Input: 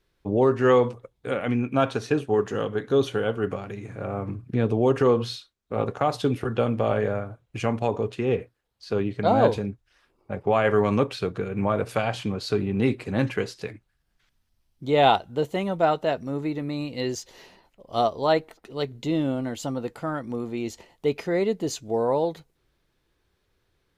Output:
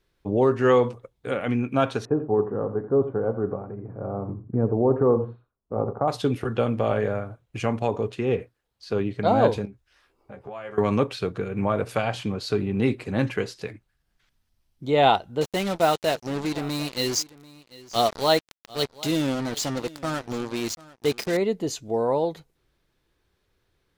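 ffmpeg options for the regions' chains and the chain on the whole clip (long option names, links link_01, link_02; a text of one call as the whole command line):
ffmpeg -i in.wav -filter_complex "[0:a]asettb=1/sr,asplit=3[link_01][link_02][link_03];[link_01]atrim=end=2.054[link_04];[link_02]atrim=start=2.05:end=6.08,asetpts=PTS-STARTPTS,afade=type=in:duration=0.004:curve=qsin,afade=type=out:start_time=4.026:duration=0.004:curve=qsin,lowpass=frequency=1100:width=0.5412,lowpass=frequency=1100:width=1.3066,aecho=1:1:85:0.237,atrim=end_sample=177723[link_05];[link_03]atrim=start=6.076[link_06];[link_04][link_05]acrossfade=duration=0.004:curve1=hsin:curve2=qsin[link_07];[link_07][link_06]acrossfade=duration=0.004:curve1=qsin:curve2=hsin,asettb=1/sr,asplit=3[link_08][link_09][link_10];[link_08]atrim=end=9.654[link_11];[link_09]atrim=start=9.65:end=10.78,asetpts=PTS-STARTPTS,afade=type=in:duration=0.004:curve=qsin,afade=type=out:start_time=1.126:duration=0.004:curve=qsin,acompressor=threshold=-39dB:ratio=3:attack=3.2:release=140:knee=1:detection=peak,equalizer=frequency=190:width_type=o:width=1.6:gain=-4.5,asplit=2[link_12][link_13];[link_13]adelay=15,volume=-4dB[link_14];[link_12][link_14]amix=inputs=2:normalize=0,atrim=end_sample=49833[link_15];[link_10]atrim=start=10.776[link_16];[link_11][link_15]acrossfade=duration=0.004:curve1=hsin:curve2=qsin[link_17];[link_17][link_16]acrossfade=duration=0.004:curve1=qsin:curve2=hsin,asettb=1/sr,asplit=3[link_18][link_19][link_20];[link_18]atrim=end=15.414[link_21];[link_19]atrim=start=15.41:end=21.37,asetpts=PTS-STARTPTS,afade=type=in:duration=0.004:curve=qsin,afade=type=out:start_time=5.956:duration=0.004:curve=qsin,equalizer=frequency=5200:width=0.96:gain=13,acrusher=bits=4:mix=0:aa=0.5,aecho=1:1:742:0.0944,atrim=end_sample=262836[link_22];[link_20]atrim=start=21.366[link_23];[link_21][link_22]acrossfade=duration=0.004:curve1=hsin:curve2=qsin[link_24];[link_24][link_23]acrossfade=duration=0.004:curve1=qsin:curve2=hsin" out.wav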